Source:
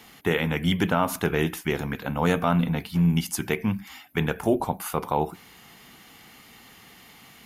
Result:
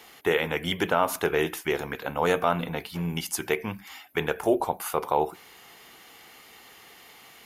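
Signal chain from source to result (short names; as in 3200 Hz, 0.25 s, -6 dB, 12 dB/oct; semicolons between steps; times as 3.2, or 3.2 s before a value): resonant low shelf 300 Hz -8 dB, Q 1.5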